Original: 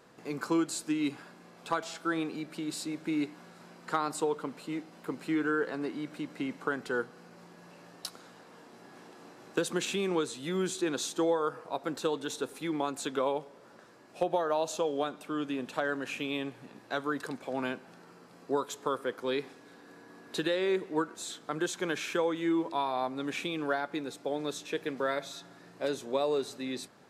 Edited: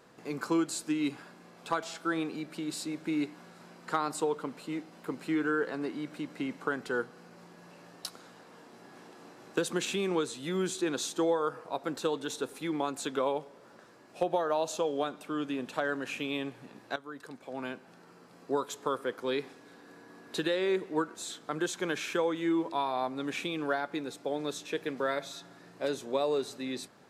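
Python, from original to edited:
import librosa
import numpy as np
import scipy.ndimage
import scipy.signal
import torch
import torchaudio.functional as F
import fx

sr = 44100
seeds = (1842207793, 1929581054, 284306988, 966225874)

y = fx.edit(x, sr, fx.fade_in_from(start_s=16.96, length_s=1.95, curve='qsin', floor_db=-15.0), tone=tone)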